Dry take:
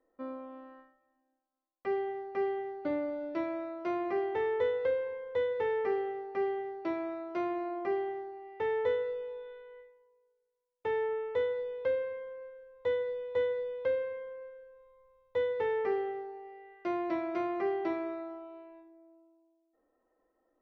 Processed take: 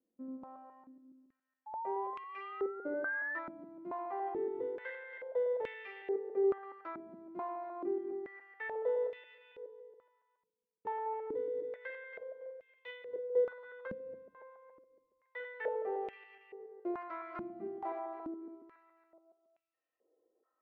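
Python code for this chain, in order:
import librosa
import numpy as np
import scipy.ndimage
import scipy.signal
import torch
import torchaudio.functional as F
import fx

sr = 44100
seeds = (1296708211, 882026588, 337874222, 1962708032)

y = fx.reverse_delay_fb(x, sr, ms=140, feedback_pct=61, wet_db=-6)
y = fx.spec_paint(y, sr, seeds[0], shape='rise', start_s=1.66, length_s=1.73, low_hz=850.0, high_hz=1800.0, level_db=-33.0)
y = fx.filter_held_bandpass(y, sr, hz=2.3, low_hz=210.0, high_hz=2600.0)
y = F.gain(torch.from_numpy(y), 3.5).numpy()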